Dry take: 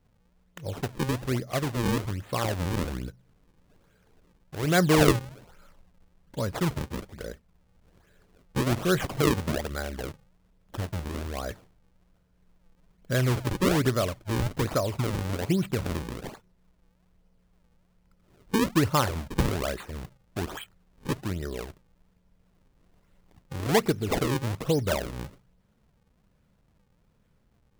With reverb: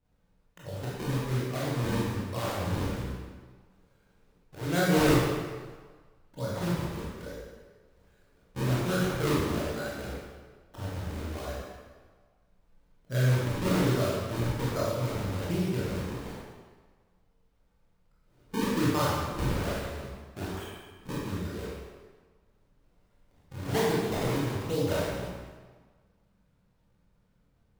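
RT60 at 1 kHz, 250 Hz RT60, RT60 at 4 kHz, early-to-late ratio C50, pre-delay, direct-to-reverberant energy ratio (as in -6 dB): 1.5 s, 1.4 s, 1.2 s, -2.5 dB, 18 ms, -7.5 dB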